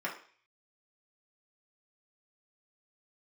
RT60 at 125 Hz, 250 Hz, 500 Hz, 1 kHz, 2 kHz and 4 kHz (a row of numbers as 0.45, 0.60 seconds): 0.35, 0.40, 0.45, 0.45, 0.55, 0.55 seconds